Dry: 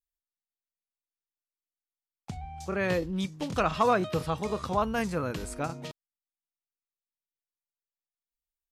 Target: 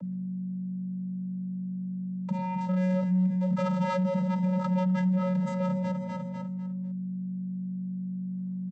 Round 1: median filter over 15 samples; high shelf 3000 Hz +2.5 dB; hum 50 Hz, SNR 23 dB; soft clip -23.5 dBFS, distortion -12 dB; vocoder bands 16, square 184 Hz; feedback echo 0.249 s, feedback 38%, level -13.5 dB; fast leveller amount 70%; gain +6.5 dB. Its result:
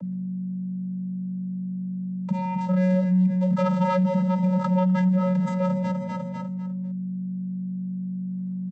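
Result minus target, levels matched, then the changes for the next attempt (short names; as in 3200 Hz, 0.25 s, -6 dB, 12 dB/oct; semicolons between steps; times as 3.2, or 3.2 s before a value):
soft clip: distortion -7 dB
change: soft clip -33 dBFS, distortion -5 dB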